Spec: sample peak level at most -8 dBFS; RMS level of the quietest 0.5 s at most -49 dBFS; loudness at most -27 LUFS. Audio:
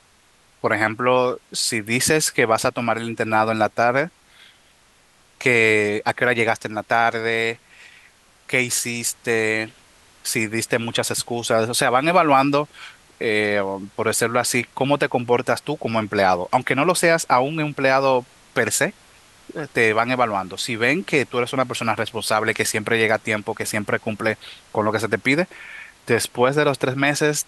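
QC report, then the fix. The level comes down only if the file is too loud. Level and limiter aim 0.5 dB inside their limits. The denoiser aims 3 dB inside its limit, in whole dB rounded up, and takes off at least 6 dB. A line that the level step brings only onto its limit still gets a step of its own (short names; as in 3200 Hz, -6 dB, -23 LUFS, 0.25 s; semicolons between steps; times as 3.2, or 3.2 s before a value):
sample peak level -4.0 dBFS: fail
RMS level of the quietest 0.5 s -56 dBFS: OK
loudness -20.5 LUFS: fail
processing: gain -7 dB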